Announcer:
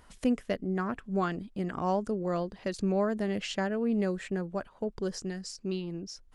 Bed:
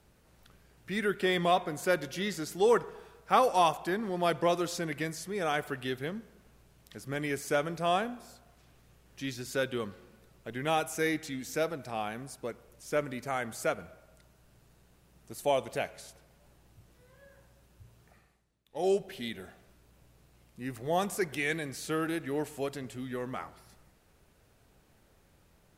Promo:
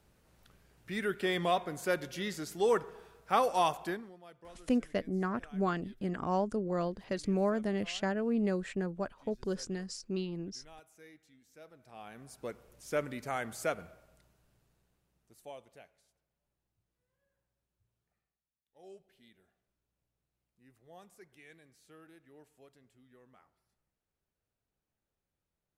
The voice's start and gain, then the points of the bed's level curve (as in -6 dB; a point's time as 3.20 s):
4.45 s, -2.0 dB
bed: 3.90 s -3.5 dB
4.22 s -26 dB
11.52 s -26 dB
12.48 s -2.5 dB
13.86 s -2.5 dB
16.05 s -25 dB